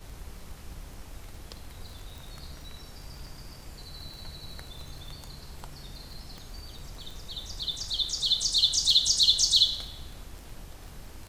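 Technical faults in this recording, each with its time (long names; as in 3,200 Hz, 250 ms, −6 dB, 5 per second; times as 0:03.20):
surface crackle 17 per second −37 dBFS
0:02.18: click
0:06.38: click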